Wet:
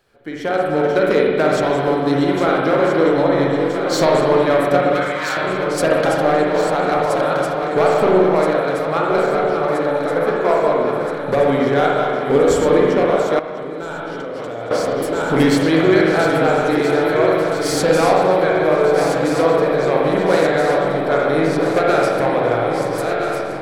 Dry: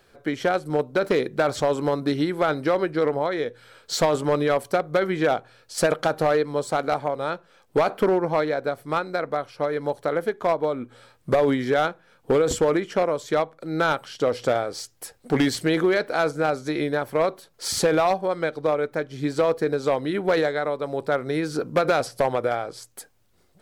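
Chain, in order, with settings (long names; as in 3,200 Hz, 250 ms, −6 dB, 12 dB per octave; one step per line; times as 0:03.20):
feedback delay that plays each chunk backwards 662 ms, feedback 79%, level −7.5 dB
0:04.94–0:05.37: inverse Chebyshev high-pass filter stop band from 400 Hz, stop band 50 dB
automatic gain control gain up to 8.5 dB
spring reverb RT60 1.7 s, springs 43/59 ms, chirp 65 ms, DRR −2.5 dB
0:13.39–0:14.71: output level in coarse steps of 22 dB
level −5 dB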